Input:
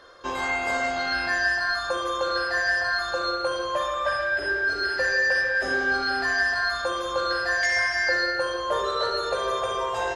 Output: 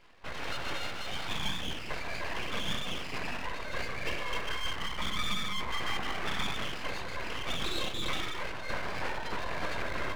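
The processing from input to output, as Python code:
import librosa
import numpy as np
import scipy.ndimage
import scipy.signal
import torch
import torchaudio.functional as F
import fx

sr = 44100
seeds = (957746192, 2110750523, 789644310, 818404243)

y = fx.echo_bbd(x, sr, ms=308, stages=2048, feedback_pct=63, wet_db=-4.5)
y = fx.lpc_vocoder(y, sr, seeds[0], excitation='whisper', order=16)
y = np.abs(y)
y = y * 10.0 ** (-7.0 / 20.0)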